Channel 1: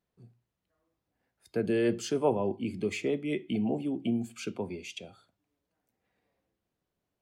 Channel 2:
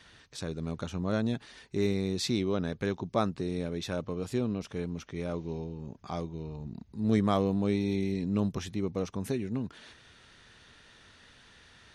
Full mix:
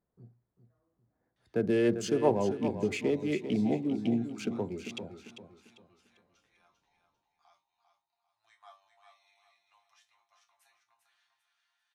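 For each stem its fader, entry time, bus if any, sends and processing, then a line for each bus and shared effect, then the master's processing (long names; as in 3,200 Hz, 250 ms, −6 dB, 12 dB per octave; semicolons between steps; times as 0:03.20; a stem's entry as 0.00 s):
+1.0 dB, 0.00 s, no send, echo send −10 dB, adaptive Wiener filter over 15 samples
−11.5 dB, 1.35 s, no send, echo send −7 dB, noise gate with hold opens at −47 dBFS; elliptic high-pass filter 740 Hz, stop band 40 dB; resonators tuned to a chord A#2 fifth, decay 0.22 s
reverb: not used
echo: repeating echo 396 ms, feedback 33%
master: no processing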